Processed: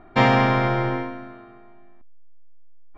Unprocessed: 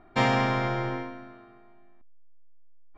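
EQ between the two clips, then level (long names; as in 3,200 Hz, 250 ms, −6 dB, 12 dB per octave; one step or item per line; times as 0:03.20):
high-frequency loss of the air 120 metres
+7.0 dB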